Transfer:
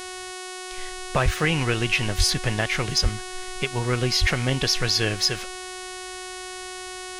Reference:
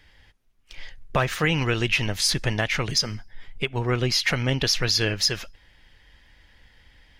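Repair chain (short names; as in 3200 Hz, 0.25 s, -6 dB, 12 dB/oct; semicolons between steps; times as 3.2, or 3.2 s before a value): de-click; de-hum 368.7 Hz, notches 30; de-plosive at 1.24/2.17/3.02/4.2; expander -28 dBFS, range -21 dB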